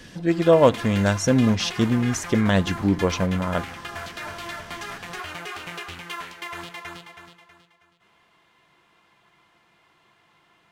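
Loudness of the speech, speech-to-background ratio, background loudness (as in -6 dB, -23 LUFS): -21.0 LUFS, 13.5 dB, -34.5 LUFS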